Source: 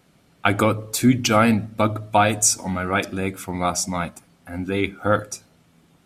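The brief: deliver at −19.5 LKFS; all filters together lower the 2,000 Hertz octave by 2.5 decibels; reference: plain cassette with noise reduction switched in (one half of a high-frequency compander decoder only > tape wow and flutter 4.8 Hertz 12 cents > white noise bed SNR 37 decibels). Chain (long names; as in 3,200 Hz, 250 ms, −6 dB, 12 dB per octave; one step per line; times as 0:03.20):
parametric band 2,000 Hz −3.5 dB
one half of a high-frequency compander decoder only
tape wow and flutter 4.8 Hz 12 cents
white noise bed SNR 37 dB
level +2 dB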